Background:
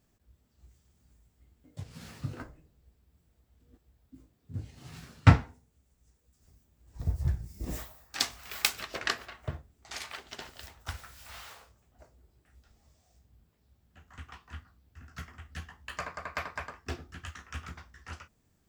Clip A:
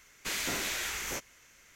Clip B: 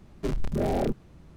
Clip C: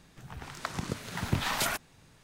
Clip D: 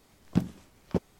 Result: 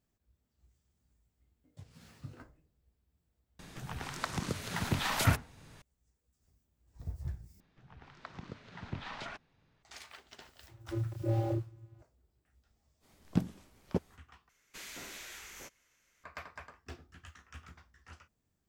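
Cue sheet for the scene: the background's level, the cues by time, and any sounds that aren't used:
background −10 dB
0:03.59: mix in C −1.5 dB + multiband upward and downward compressor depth 40%
0:07.60: overwrite with C −11.5 dB + Bessel low-pass filter 3,500 Hz, order 4
0:10.67: mix in B −3 dB + channel vocoder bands 16, square 113 Hz
0:13.00: mix in D −4 dB, fades 0.05 s
0:14.49: overwrite with A −13 dB

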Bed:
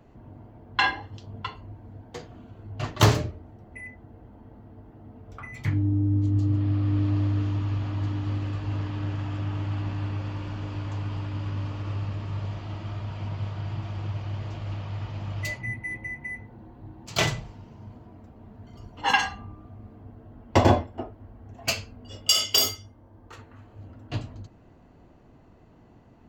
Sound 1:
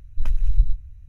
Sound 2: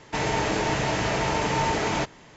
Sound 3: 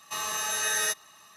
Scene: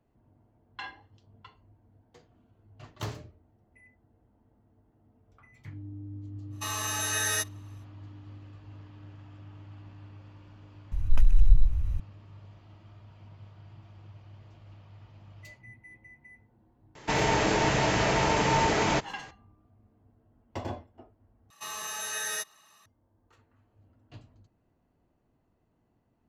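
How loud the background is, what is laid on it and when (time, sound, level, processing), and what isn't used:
bed −18 dB
0:06.50: mix in 3 −1.5 dB, fades 0.05 s + noise gate −46 dBFS, range −10 dB
0:10.92: mix in 1 −2 dB + envelope flattener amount 50%
0:16.95: mix in 2
0:21.50: overwrite with 3 −6 dB

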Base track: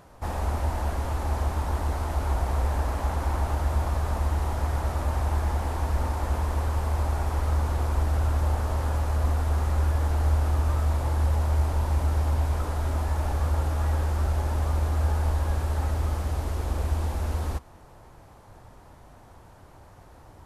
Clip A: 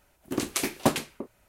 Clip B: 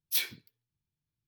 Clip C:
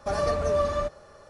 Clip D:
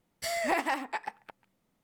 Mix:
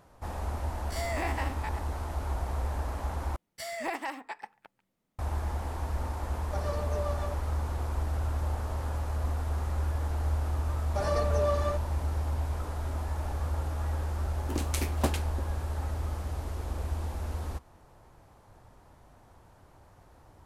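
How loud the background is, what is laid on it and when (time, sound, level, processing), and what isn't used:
base track −6.5 dB
0:00.70: mix in D −2.5 dB + spectrum averaged block by block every 50 ms
0:03.36: overwrite with D −5.5 dB
0:06.46: mix in C −8 dB + rotating-speaker cabinet horn 7.5 Hz
0:10.89: mix in C −4 dB
0:14.18: mix in A −6.5 dB
not used: B

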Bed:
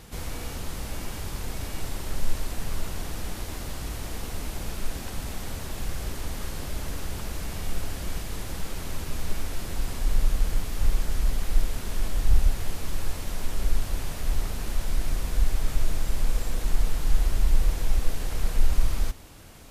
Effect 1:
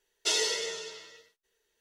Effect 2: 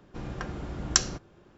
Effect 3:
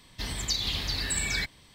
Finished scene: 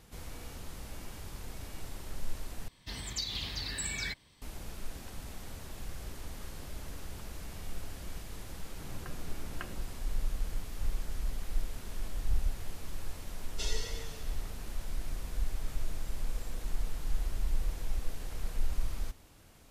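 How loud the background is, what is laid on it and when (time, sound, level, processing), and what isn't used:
bed −10.5 dB
0:02.68: overwrite with 3 −7 dB
0:08.65: mix in 2 −12 dB + Butterworth low-pass 3,000 Hz 96 dB per octave
0:13.33: mix in 1 −12 dB

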